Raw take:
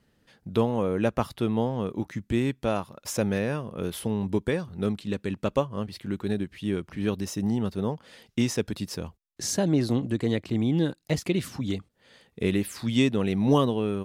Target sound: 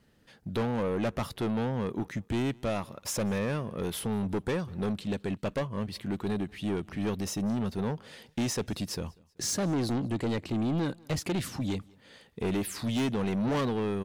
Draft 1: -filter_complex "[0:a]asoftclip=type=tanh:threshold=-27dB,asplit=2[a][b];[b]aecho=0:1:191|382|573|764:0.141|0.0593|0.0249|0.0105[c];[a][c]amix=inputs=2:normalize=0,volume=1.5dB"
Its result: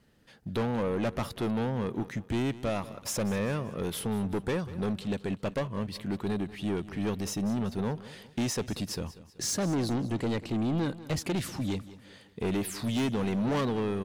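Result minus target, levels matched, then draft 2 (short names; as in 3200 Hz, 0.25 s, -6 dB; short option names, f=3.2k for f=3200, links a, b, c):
echo-to-direct +10 dB
-filter_complex "[0:a]asoftclip=type=tanh:threshold=-27dB,asplit=2[a][b];[b]aecho=0:1:191|382:0.0447|0.0188[c];[a][c]amix=inputs=2:normalize=0,volume=1.5dB"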